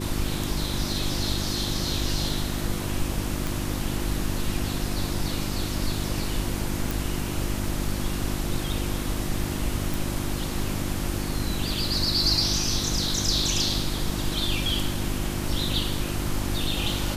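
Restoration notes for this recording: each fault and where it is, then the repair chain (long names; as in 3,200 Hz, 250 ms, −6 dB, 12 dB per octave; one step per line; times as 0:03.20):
mains hum 50 Hz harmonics 7 −31 dBFS
0:03.47: click
0:06.91: click
0:09.94: click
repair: click removal
hum removal 50 Hz, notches 7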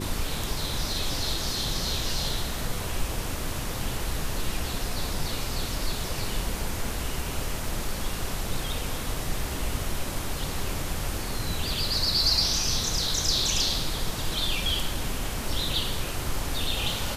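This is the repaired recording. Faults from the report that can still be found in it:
none of them is left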